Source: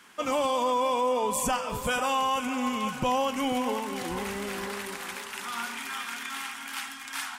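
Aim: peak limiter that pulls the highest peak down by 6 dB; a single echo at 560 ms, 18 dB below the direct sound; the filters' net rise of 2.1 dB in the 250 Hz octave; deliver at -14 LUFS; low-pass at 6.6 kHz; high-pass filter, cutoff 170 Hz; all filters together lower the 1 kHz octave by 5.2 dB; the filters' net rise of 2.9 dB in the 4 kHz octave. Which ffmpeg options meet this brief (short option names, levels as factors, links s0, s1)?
-af "highpass=170,lowpass=6600,equalizer=f=250:t=o:g=3.5,equalizer=f=1000:t=o:g=-6.5,equalizer=f=4000:t=o:g=5,alimiter=limit=0.075:level=0:latency=1,aecho=1:1:560:0.126,volume=7.94"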